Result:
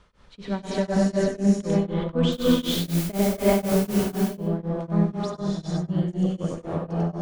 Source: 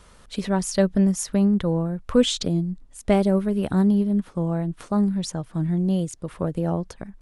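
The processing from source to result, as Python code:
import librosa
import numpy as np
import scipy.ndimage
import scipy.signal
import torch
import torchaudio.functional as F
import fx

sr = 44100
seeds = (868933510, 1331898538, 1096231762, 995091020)

y = scipy.signal.sosfilt(scipy.signal.butter(2, 4600.0, 'lowpass', fs=sr, output='sos'), x)
y = fx.quant_dither(y, sr, seeds[0], bits=6, dither='triangular', at=(2.32, 3.87))
y = fx.echo_feedback(y, sr, ms=96, feedback_pct=25, wet_db=-4.5)
y = fx.rev_gated(y, sr, seeds[1], gate_ms=440, shape='rising', drr_db=-6.0)
y = y * np.abs(np.cos(np.pi * 4.0 * np.arange(len(y)) / sr))
y = y * 10.0 ** (-5.5 / 20.0)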